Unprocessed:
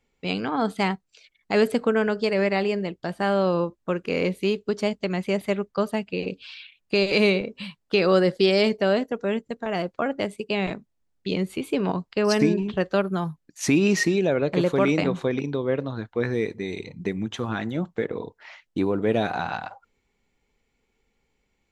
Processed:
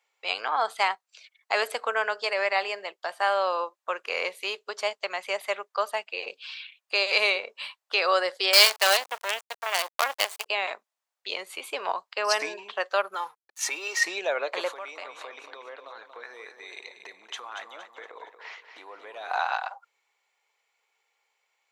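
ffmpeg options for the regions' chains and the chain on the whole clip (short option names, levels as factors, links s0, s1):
-filter_complex "[0:a]asettb=1/sr,asplit=3[s0][s1][s2];[s0]atrim=end=8.534[s3];[s1]atrim=start=8.53:end=10.46,asetpts=PTS-STARTPTS,afade=t=in:d=0.004:c=qsin,afade=t=out:st=1.926:d=0.004:c=qsin,highpass=f=200:p=1,equalizer=f=5400:t=o:w=2.1:g=12.5,acrusher=bits=4:dc=4:mix=0:aa=0.000001[s4];[s2]atrim=start=10.456[s5];[s3][s4]acrossfade=d=0.004:c1=hsin:c2=qsin[s6];[s6][s5]acrossfade=d=0.004:c1=qsin:c2=hsin,asettb=1/sr,asplit=3[s7][s8][s9];[s7]atrim=end=13.144[s10];[s8]atrim=start=13.14:end=14.02,asetpts=PTS-STARTPTS,afade=t=in:d=0.004:c=qsin,afade=t=out:st=0.876:d=0.004:c=qsin,aecho=1:1:2.2:0.78,atrim=end_sample=38808,acompressor=threshold=0.0562:ratio=3:attack=3.2:release=140:knee=1:detection=peak,aeval=exprs='sgn(val(0))*max(abs(val(0))-0.00266,0)':c=same[s11];[s9]atrim=start=14.016[s12];[s10][s11]acrossfade=d=0.004:c1=hsin:c2=qsin[s13];[s13][s12]acrossfade=d=0.004:c1=qsin:c2=hsin,asettb=1/sr,asplit=3[s14][s15][s16];[s14]atrim=end=14.724[s17];[s15]atrim=start=14.72:end=19.31,asetpts=PTS-STARTPTS,afade=t=in:d=0.004:c=qsin,afade=t=out:st=4.586:d=0.004:c=qsin,acompressor=threshold=0.0251:ratio=5:attack=3.2:release=140:knee=1:detection=peak,aecho=1:1:233|466|699|932:0.376|0.147|0.0572|0.0223,atrim=end_sample=202419[s18];[s16]atrim=start=19.306[s19];[s17][s18]acrossfade=d=0.004:c1=hsin:c2=qsin[s20];[s20][s19]acrossfade=d=0.004:c1=qsin:c2=hsin,highpass=f=650:w=0.5412,highpass=f=650:w=1.3066,equalizer=f=1100:t=o:w=0.38:g=3,volume=1.26"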